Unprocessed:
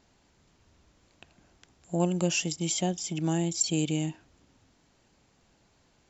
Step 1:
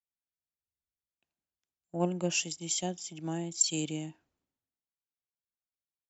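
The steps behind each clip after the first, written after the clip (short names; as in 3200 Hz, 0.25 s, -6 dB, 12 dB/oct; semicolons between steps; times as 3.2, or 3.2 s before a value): low shelf 110 Hz -9.5 dB; three-band expander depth 100%; gain -7.5 dB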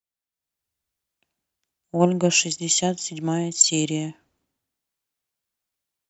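AGC gain up to 9.5 dB; gain +2 dB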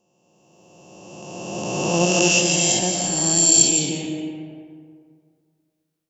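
spectral swells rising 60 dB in 2.36 s; on a send at -3 dB: reverb RT60 2.1 s, pre-delay 0.115 s; on the sum: gain -4 dB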